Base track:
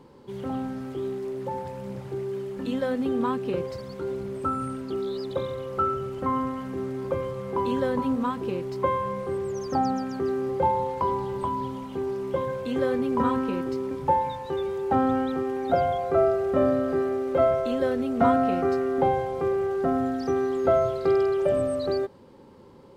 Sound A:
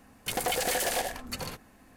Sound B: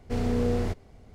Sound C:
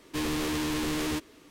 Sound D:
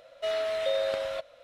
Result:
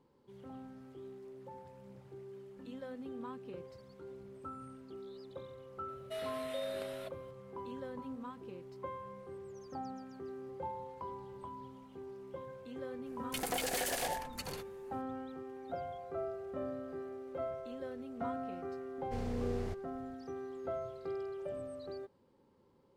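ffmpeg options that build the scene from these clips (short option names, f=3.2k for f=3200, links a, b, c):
-filter_complex "[0:a]volume=-18.5dB[a];[4:a]aexciter=amount=3.5:drive=7.8:freq=8.6k,atrim=end=1.43,asetpts=PTS-STARTPTS,volume=-11.5dB,afade=t=in:d=0.004:c=hsin,afade=t=out:st=1.426:d=0.004:c=hsin,adelay=5880[b];[1:a]atrim=end=1.96,asetpts=PTS-STARTPTS,volume=-7dB,afade=t=in:d=0.004:c=hsin,afade=t=out:st=1.956:d=0.004:c=hsin,adelay=13060[c];[2:a]atrim=end=1.14,asetpts=PTS-STARTPTS,volume=-11.5dB,afade=t=in:d=0.004:c=hsin,afade=t=out:st=1.136:d=0.004:c=hsin,adelay=19010[d];[a][b][c][d]amix=inputs=4:normalize=0"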